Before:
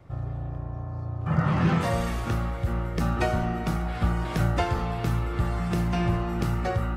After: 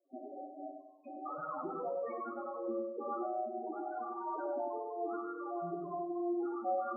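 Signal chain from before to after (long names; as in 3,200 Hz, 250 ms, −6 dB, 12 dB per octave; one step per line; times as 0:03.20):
loose part that buzzes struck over −25 dBFS, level −31 dBFS
noise gate with hold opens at −24 dBFS
high-pass filter 290 Hz 24 dB per octave
brickwall limiter −23 dBFS, peak gain reduction 10 dB
downward compressor 5 to 1, threshold −39 dBFS, peak gain reduction 10 dB
spectral peaks only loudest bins 4
flanger 0.42 Hz, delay 7.2 ms, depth 6.1 ms, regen +36%
feedback echo with a low-pass in the loop 98 ms, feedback 41%, low-pass 1,100 Hz, level −4 dB
on a send at −10.5 dB: convolution reverb RT60 0.75 s, pre-delay 36 ms
on the sum: level +11 dB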